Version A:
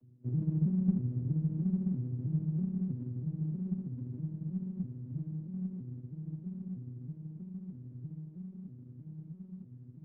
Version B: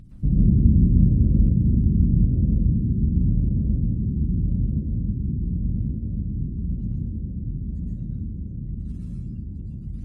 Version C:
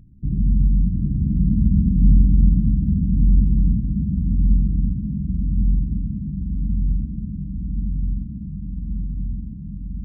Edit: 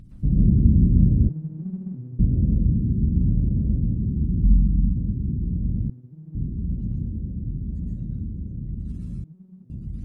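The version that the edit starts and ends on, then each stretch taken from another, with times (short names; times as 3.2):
B
1.29–2.19 from A
4.44–4.97 from C
5.9–6.35 from A
9.24–9.7 from A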